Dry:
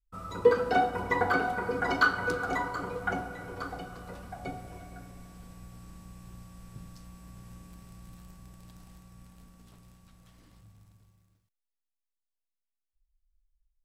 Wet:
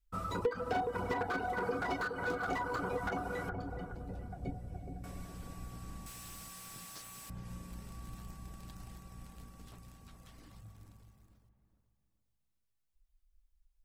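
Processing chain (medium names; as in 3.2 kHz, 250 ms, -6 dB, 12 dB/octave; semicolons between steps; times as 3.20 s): 3.49–5.04 s: FFT filter 140 Hz 0 dB, 780 Hz -12 dB, 1.2 kHz -30 dB, 1.8 kHz -16 dB; compression 4:1, threshold -36 dBFS, peak gain reduction 17 dB; 6.06–7.30 s: tilt EQ +4.5 dB/octave; reverb removal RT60 0.58 s; feedback echo behind a low-pass 419 ms, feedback 33%, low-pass 1.4 kHz, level -7 dB; slew-rate limiter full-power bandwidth 19 Hz; trim +4 dB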